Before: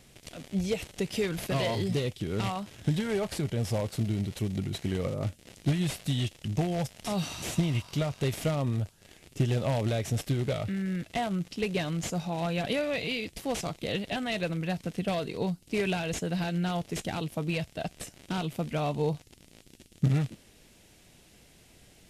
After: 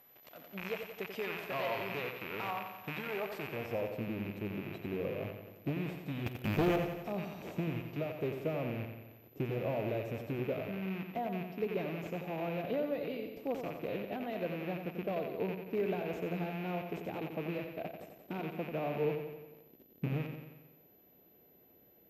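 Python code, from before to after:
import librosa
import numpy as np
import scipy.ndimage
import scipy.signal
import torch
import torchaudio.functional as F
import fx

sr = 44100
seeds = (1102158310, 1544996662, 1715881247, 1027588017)

p1 = fx.rattle_buzz(x, sr, strikes_db=-37.0, level_db=-20.0)
p2 = p1 + 10.0 ** (-33.0 / 20.0) * np.sin(2.0 * np.pi * 12000.0 * np.arange(len(p1)) / sr)
p3 = fx.filter_sweep_bandpass(p2, sr, from_hz=980.0, to_hz=430.0, start_s=3.34, end_s=3.87, q=1.0)
p4 = fx.leveller(p3, sr, passes=3, at=(6.26, 6.76))
p5 = p4 + fx.echo_feedback(p4, sr, ms=89, feedback_pct=58, wet_db=-7.0, dry=0)
y = F.gain(torch.from_numpy(p5), -3.0).numpy()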